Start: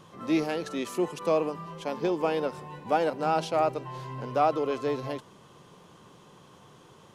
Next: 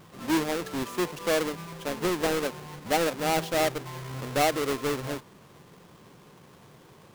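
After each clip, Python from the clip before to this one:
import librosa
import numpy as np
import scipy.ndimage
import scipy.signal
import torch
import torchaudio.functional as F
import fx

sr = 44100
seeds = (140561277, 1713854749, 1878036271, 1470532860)

y = fx.halfwave_hold(x, sr)
y = F.gain(torch.from_numpy(y), -4.0).numpy()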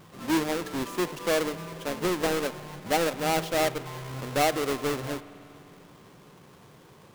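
y = fx.rev_spring(x, sr, rt60_s=3.3, pass_ms=(49,), chirp_ms=35, drr_db=16.0)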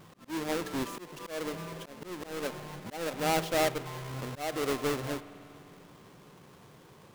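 y = fx.auto_swell(x, sr, attack_ms=294.0)
y = F.gain(torch.from_numpy(y), -2.0).numpy()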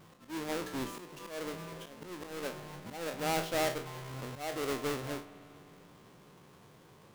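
y = fx.spec_trails(x, sr, decay_s=0.33)
y = F.gain(torch.from_numpy(y), -4.5).numpy()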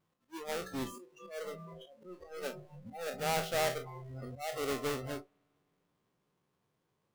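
y = fx.noise_reduce_blind(x, sr, reduce_db=22)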